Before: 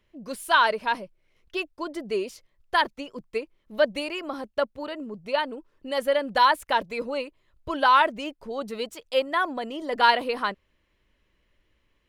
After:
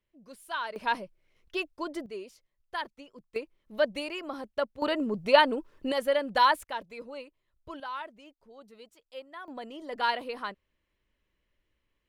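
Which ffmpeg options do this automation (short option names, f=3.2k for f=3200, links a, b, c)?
-af "asetnsamples=n=441:p=0,asendcmd='0.76 volume volume -2.5dB;2.06 volume volume -12.5dB;3.36 volume volume -4.5dB;4.82 volume volume 6dB;5.92 volume volume -3dB;6.64 volume volume -12dB;7.8 volume volume -19.5dB;9.48 volume volume -9dB',volume=-14.5dB"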